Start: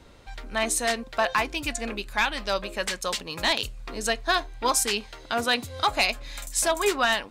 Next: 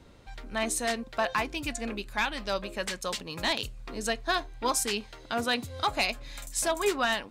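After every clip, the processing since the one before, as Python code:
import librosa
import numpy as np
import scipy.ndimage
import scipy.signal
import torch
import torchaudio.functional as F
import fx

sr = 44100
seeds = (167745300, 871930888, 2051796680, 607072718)

y = fx.peak_eq(x, sr, hz=160.0, db=5.0, octaves=2.6)
y = y * librosa.db_to_amplitude(-5.0)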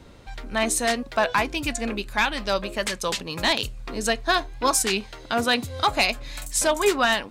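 y = fx.record_warp(x, sr, rpm=33.33, depth_cents=100.0)
y = y * librosa.db_to_amplitude(6.5)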